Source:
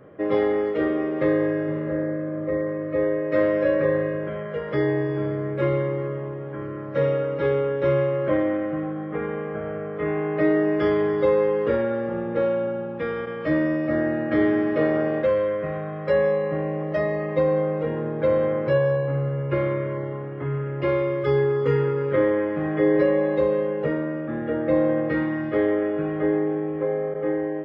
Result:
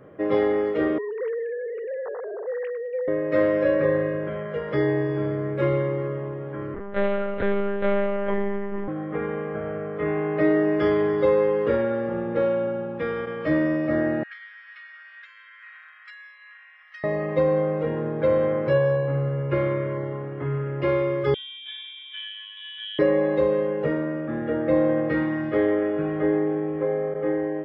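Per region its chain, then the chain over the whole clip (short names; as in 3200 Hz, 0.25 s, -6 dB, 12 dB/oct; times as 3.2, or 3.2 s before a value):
0.98–3.08 sine-wave speech + compressor 2.5:1, threshold -29 dBFS + feedback echo 0.106 s, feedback 58%, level -22.5 dB
6.74–8.88 low shelf 66 Hz -6.5 dB + notch 520 Hz, Q 14 + monotone LPC vocoder at 8 kHz 200 Hz
14.23–17.04 compressor 10:1, threshold -25 dBFS + steep high-pass 1500 Hz
21.34–22.99 air absorption 240 m + resonator 630 Hz, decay 0.18 s, mix 90% + inverted band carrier 3600 Hz
whole clip: dry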